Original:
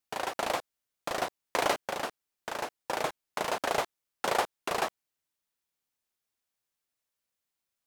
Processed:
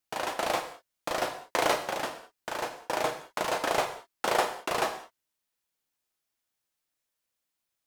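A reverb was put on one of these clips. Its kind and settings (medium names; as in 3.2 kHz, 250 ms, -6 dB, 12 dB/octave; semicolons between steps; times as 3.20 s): gated-style reverb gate 230 ms falling, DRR 5 dB; trim +1 dB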